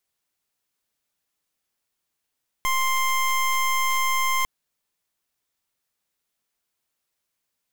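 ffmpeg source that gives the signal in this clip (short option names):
-f lavfi -i "aevalsrc='0.0794*(2*lt(mod(1050*t,1),0.22)-1)':d=1.8:s=44100"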